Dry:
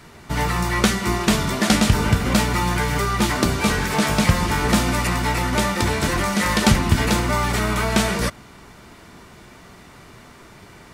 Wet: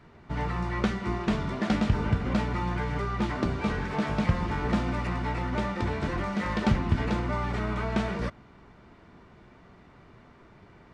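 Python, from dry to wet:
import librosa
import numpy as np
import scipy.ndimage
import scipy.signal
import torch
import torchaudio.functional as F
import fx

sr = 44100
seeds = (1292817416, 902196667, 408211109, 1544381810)

y = fx.spacing_loss(x, sr, db_at_10k=27)
y = F.gain(torch.from_numpy(y), -7.0).numpy()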